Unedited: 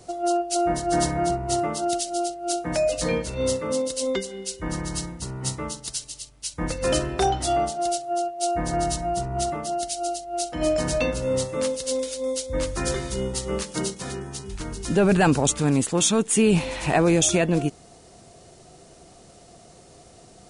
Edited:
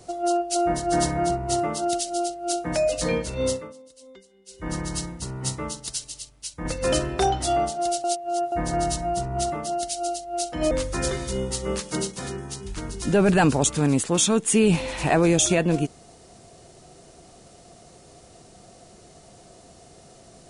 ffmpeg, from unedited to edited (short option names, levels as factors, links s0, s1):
-filter_complex "[0:a]asplit=7[s0][s1][s2][s3][s4][s5][s6];[s0]atrim=end=3.73,asetpts=PTS-STARTPTS,afade=t=out:st=3.47:d=0.26:silence=0.0749894[s7];[s1]atrim=start=3.73:end=4.46,asetpts=PTS-STARTPTS,volume=0.075[s8];[s2]atrim=start=4.46:end=6.65,asetpts=PTS-STARTPTS,afade=t=in:d=0.26:silence=0.0749894,afade=t=out:st=1.73:d=0.46:silence=0.501187[s9];[s3]atrim=start=6.65:end=8.042,asetpts=PTS-STARTPTS,afade=t=in:d=0.004:c=hsin:silence=0.501187[s10];[s4]atrim=start=8.038:end=8.522,asetpts=PTS-STARTPTS,areverse[s11];[s5]atrim=start=8.518:end=10.712[s12];[s6]atrim=start=12.538[s13];[s7][s8][s9][s10]concat=n=4:v=0:a=1[s14];[s14][s11]acrossfade=d=0.004:c1=hsin:c2=hsin[s15];[s15][s12]acrossfade=d=0.004:c1=hsin:c2=hsin[s16];[s16][s13]acrossfade=d=0.004:c1=hsin:c2=hsin"